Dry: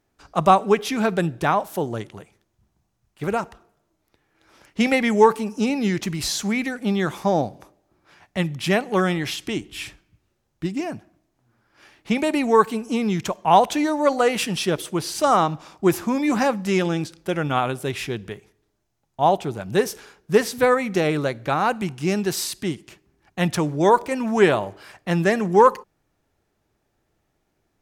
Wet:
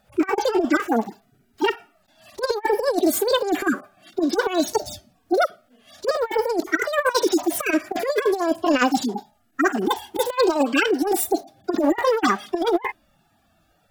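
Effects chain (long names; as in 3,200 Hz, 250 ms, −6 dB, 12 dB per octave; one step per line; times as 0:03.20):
harmonic-percussive split with one part muted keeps harmonic
compressor whose output falls as the input rises −26 dBFS, ratio −0.5
wrong playback speed 7.5 ips tape played at 15 ips
level +6.5 dB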